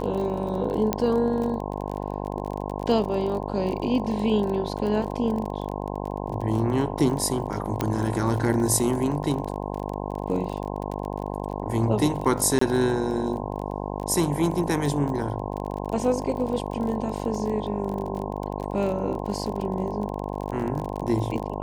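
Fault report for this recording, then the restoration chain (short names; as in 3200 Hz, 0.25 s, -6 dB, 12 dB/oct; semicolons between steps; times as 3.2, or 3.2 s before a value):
buzz 50 Hz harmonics 21 -31 dBFS
crackle 28/s -30 dBFS
0.93 pop -8 dBFS
7.81 pop -11 dBFS
12.59–12.61 gap 24 ms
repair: de-click; de-hum 50 Hz, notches 21; interpolate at 12.59, 24 ms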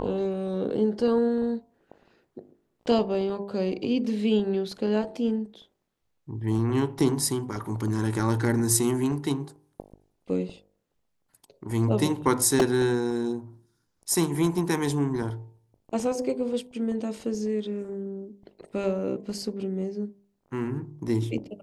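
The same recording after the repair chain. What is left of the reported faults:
none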